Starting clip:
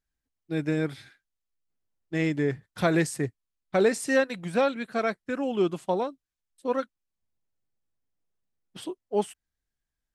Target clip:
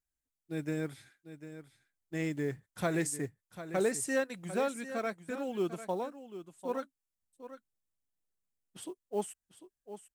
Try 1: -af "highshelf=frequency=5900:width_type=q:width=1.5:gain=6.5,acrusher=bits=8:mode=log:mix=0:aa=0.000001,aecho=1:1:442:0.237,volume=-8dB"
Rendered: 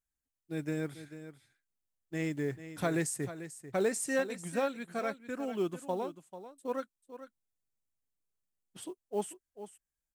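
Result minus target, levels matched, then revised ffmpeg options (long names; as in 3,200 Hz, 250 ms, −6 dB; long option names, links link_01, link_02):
echo 305 ms early
-af "highshelf=frequency=5900:width_type=q:width=1.5:gain=6.5,acrusher=bits=8:mode=log:mix=0:aa=0.000001,aecho=1:1:747:0.237,volume=-8dB"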